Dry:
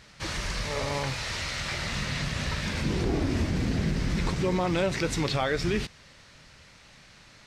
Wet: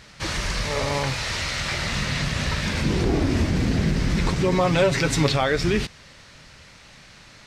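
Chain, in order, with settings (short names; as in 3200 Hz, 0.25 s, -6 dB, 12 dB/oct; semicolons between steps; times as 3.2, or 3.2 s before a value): 4.51–5.32 comb 7.3 ms, depth 69%; gain +5.5 dB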